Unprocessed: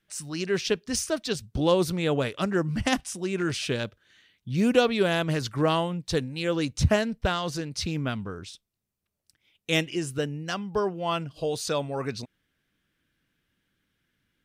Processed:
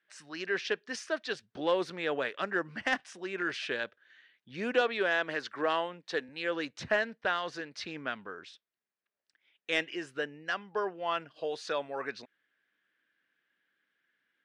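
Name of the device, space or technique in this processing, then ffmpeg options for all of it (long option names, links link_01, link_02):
intercom: -filter_complex "[0:a]highpass=410,lowpass=3700,equalizer=frequency=1700:width_type=o:width=0.47:gain=8.5,asoftclip=type=tanh:threshold=-10.5dB,asettb=1/sr,asplit=3[link_01][link_02][link_03];[link_01]atrim=end=4.814[link_04];[link_02]atrim=start=4.81:end=6.29,asetpts=PTS-STARTPTS,afade=type=in:duration=0.004:curve=qsin,afade=type=out:start_time=1.476:duration=0.004:curve=qsin,highpass=180[link_05];[link_03]atrim=start=6.286[link_06];[link_04][link_05]acrossfade=duration=0.004:curve1=hsin:curve2=qsin[link_07];[link_07][link_06]acrossfade=duration=0.004:curve1=qsin:curve2=hsin,volume=-4dB"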